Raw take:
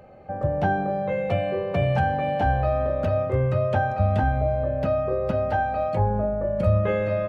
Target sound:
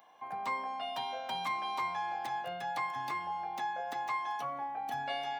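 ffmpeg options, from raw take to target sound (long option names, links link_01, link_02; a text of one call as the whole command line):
ffmpeg -i in.wav -af "highpass=frequency=410:poles=1,aemphasis=mode=production:type=riaa,asetrate=59535,aresample=44100,volume=-8.5dB" out.wav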